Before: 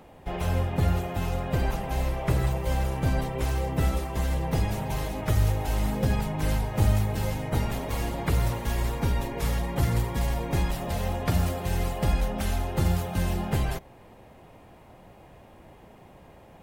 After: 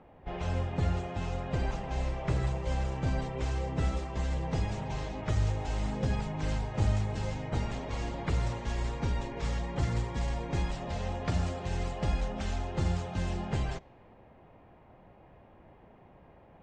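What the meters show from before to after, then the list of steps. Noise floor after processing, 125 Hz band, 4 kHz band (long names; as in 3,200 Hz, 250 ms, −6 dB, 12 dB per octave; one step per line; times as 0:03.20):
−57 dBFS, −5.5 dB, −5.5 dB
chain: on a send: backwards echo 31 ms −20.5 dB
on the sum: low-pass that shuts in the quiet parts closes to 2,100 Hz, open at −21 dBFS
Butterworth low-pass 7,900 Hz 48 dB per octave
level −5.5 dB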